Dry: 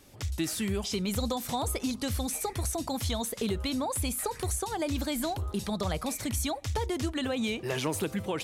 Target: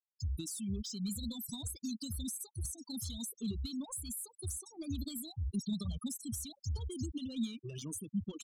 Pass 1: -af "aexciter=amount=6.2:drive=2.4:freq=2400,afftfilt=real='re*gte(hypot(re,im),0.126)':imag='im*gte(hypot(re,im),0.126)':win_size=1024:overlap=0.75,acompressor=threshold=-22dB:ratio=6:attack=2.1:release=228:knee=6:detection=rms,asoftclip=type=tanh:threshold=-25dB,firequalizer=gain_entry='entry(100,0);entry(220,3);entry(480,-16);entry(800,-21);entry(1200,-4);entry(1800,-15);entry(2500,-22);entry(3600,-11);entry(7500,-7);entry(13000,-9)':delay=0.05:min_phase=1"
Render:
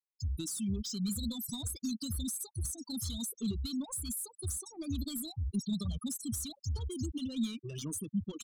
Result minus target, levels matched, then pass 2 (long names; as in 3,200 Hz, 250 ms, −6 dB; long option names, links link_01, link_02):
downward compressor: peak gain reduction −5.5 dB
-af "aexciter=amount=6.2:drive=2.4:freq=2400,afftfilt=real='re*gte(hypot(re,im),0.126)':imag='im*gte(hypot(re,im),0.126)':win_size=1024:overlap=0.75,acompressor=threshold=-28.5dB:ratio=6:attack=2.1:release=228:knee=6:detection=rms,asoftclip=type=tanh:threshold=-25dB,firequalizer=gain_entry='entry(100,0);entry(220,3);entry(480,-16);entry(800,-21);entry(1200,-4);entry(1800,-15);entry(2500,-22);entry(3600,-11);entry(7500,-7);entry(13000,-9)':delay=0.05:min_phase=1"